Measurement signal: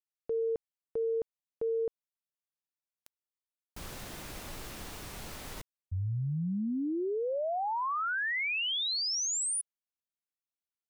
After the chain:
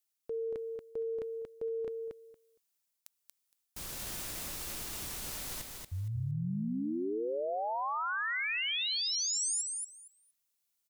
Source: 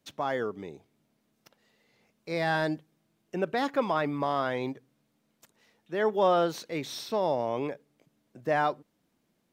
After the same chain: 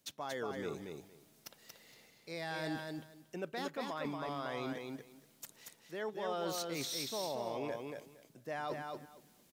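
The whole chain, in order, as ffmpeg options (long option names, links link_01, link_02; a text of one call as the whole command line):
ffmpeg -i in.wav -af "highshelf=frequency=3800:gain=12,areverse,acompressor=threshold=-37dB:ratio=6:attack=0.27:release=574:knee=6:detection=peak,areverse,aecho=1:1:232|464|696:0.631|0.107|0.0182,volume=3dB" out.wav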